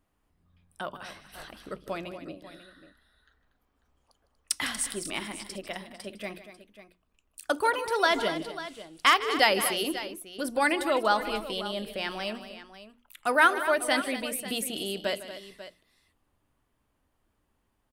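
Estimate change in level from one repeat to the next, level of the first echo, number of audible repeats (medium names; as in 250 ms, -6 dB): no regular repeats, -15.0 dB, 3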